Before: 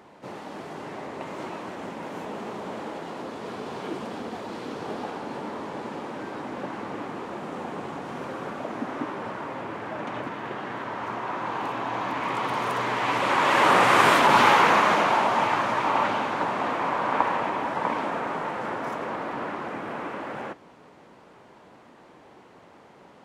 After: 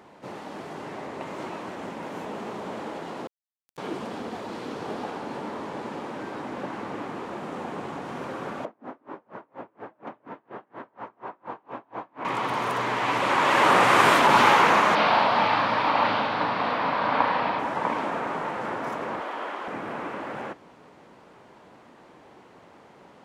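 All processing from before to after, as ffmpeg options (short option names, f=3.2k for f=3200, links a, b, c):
-filter_complex "[0:a]asettb=1/sr,asplit=3[a][b][c];[a]atrim=end=3.274[d];[b]atrim=start=3.27:end=3.78,asetpts=PTS-STARTPTS,afade=t=in:d=0.004:c=qsin,afade=t=out:st=0.506:d=0.004:c=qsin,aderivative,acrusher=bits=4:dc=4:mix=0:aa=0.000001[e];[c]atrim=start=3.776[f];[d][e]acrossfade=d=0.004:c1=hsin:c2=qsin[g];[g][f]acrossfade=d=0.004:c1=qsin:c2=hsin,asettb=1/sr,asplit=3[h][i][j];[h]atrim=end=8.654[k];[i]atrim=start=8.65:end=12.25,asetpts=PTS-STARTPTS,afade=t=in:d=0.004:c=qsin,afade=t=out:st=3.596:d=0.004:c=qsin,bandpass=f=450:t=q:w=0.51,bandreject=f=50:t=h:w=6,bandreject=f=100:t=h:w=6,bandreject=f=150:t=h:w=6,bandreject=f=200:t=h:w=6,bandreject=f=250:t=h:w=6,bandreject=f=300:t=h:w=6,bandreject=f=350:t=h:w=6,bandreject=f=400:t=h:w=6,bandreject=f=450:t=h:w=6,aeval=exprs='val(0)*pow(10,-35*(0.5-0.5*cos(2*PI*4.2*n/s))/20)':c=same[l];[j]atrim=start=12.246[m];[k][l]acrossfade=d=0.004:c1=hsin:c2=qsin[n];[n][m]acrossfade=d=0.004:c1=qsin:c2=hsin,asettb=1/sr,asplit=3[o][p][q];[o]atrim=end=14.954[r];[p]atrim=start=14.95:end=17.59,asetpts=PTS-STARTPTS,afade=t=in:d=0.004:c=qsin,afade=t=out:st=2.636:d=0.004:c=qsin,highshelf=f=5.7k:t=q:w=3:g=-9,bandreject=f=370:w=5.3,asplit=2[s][t];[t]adelay=37,volume=-6dB[u];[s][u]amix=inputs=2:normalize=0,atrim=end_sample=116424[v];[q]atrim=start=17.586[w];[r][v]acrossfade=d=0.004:c1=hsin:c2=qsin[x];[x][w]acrossfade=d=0.004:c1=qsin:c2=hsin,asettb=1/sr,asplit=3[y][z][aa];[y]atrim=end=19.204[ab];[z]atrim=start=19.2:end=19.68,asetpts=PTS-STARTPTS,afade=t=in:d=0.004:c=qsin,afade=t=out:st=0.476:d=0.004:c=qsin,highpass=430,equalizer=f=3.2k:t=o:w=0.21:g=6.5[ac];[aa]atrim=start=19.676[ad];[ab][ac]acrossfade=d=0.004:c1=hsin:c2=qsin[ae];[ae][ad]acrossfade=d=0.004:c1=qsin:c2=hsin"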